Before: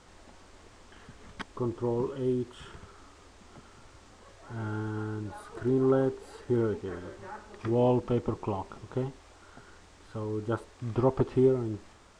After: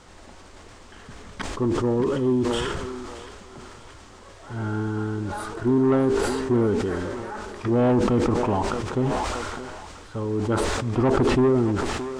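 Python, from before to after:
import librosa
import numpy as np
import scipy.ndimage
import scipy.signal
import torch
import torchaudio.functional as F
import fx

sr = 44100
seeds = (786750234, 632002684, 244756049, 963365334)

y = fx.dynamic_eq(x, sr, hz=250.0, q=2.2, threshold_db=-41.0, ratio=4.0, max_db=5)
y = 10.0 ** (-21.0 / 20.0) * np.tanh(y / 10.0 ** (-21.0 / 20.0))
y = fx.echo_thinned(y, sr, ms=623, feedback_pct=72, hz=670.0, wet_db=-11.0)
y = fx.sustainer(y, sr, db_per_s=22.0)
y = y * librosa.db_to_amplitude(6.5)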